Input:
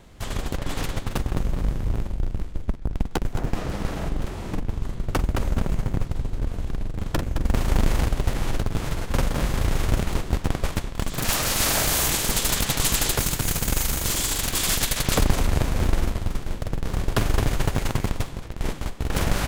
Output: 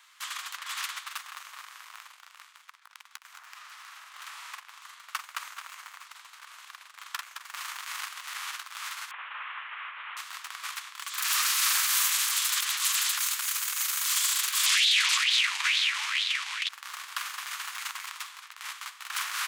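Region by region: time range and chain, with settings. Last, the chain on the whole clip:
2.48–4.14 HPF 520 Hz 24 dB/oct + compressor 8:1, threshold -41 dBFS
9.11–10.17 delta modulation 16 kbps, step -36 dBFS + bell 370 Hz +5.5 dB 0.35 oct
14.66–16.69 LPF 7700 Hz + resonant high shelf 1700 Hz +10 dB, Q 1.5 + LFO bell 2.2 Hz 850–3900 Hz +16 dB
whole clip: limiter -15 dBFS; elliptic high-pass 1100 Hz, stop band 80 dB; gain +1.5 dB

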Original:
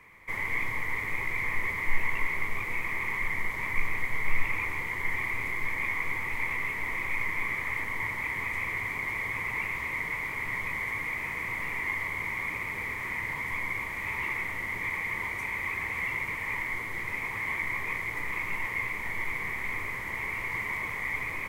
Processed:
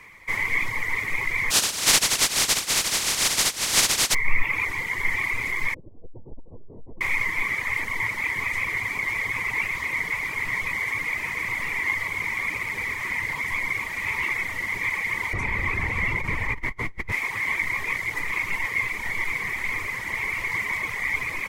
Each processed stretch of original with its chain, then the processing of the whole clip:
1.5–4.13 spectral contrast lowered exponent 0.13 + LPF 11000 Hz + compressor 2.5:1, threshold -26 dBFS
5.74–7.01 steep low-pass 610 Hz + hard clip -27.5 dBFS + core saturation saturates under 27 Hz
15.33–17.12 tilt -3 dB/oct + negative-ratio compressor -31 dBFS
whole clip: reverb removal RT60 0.89 s; bell 5500 Hz +8.5 dB 2.1 oct; gain +5 dB

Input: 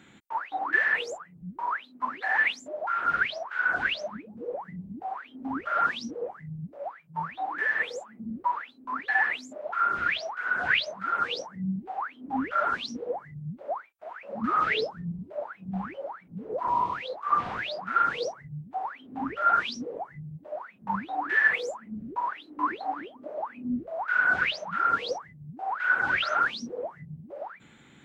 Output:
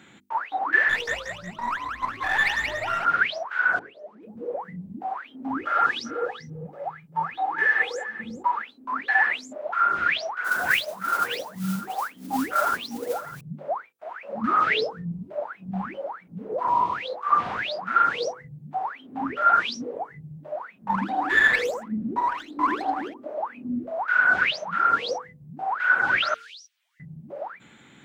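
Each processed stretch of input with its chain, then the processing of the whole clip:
0.89–3.05 half-wave gain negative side -7 dB + frequency-shifting echo 0.182 s, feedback 44%, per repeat +53 Hz, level -4.5 dB
3.79–4.23 zero-crossing step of -39 dBFS + band-pass 420 Hz, Q 5.1
5.57–8.62 comb 2.4 ms, depth 43% + echo 0.393 s -14 dB
10.44–13.41 high shelf 3900 Hz -9.5 dB + modulation noise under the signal 16 dB + echo 0.604 s -15.5 dB
20.9–23.14 bell 260 Hz +6.5 dB 1.5 oct + echo 83 ms -8 dB + running maximum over 3 samples
26.34–27 inverse Chebyshev high-pass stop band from 500 Hz, stop band 80 dB + compressor 4:1, threshold -46 dBFS
whole clip: low shelf 63 Hz -11 dB; notches 50/100/150/200/250/300/350/400/450/500 Hz; gain +4 dB

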